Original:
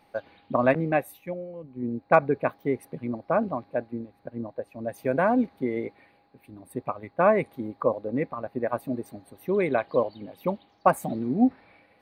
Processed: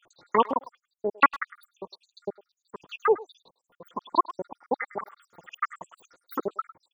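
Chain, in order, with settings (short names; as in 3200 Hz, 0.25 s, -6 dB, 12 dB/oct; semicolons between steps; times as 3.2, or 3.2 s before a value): random spectral dropouts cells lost 84%; treble ducked by the level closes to 1100 Hz, closed at -26 dBFS; speakerphone echo 0.18 s, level -17 dB; speed mistake 45 rpm record played at 78 rpm; gain +3.5 dB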